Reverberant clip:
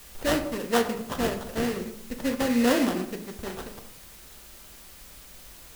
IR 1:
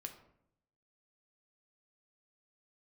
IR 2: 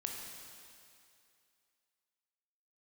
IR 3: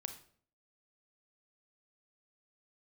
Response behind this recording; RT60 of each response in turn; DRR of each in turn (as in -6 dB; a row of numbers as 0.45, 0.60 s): 1; 0.75, 2.5, 0.55 s; 4.5, 0.5, 7.0 dB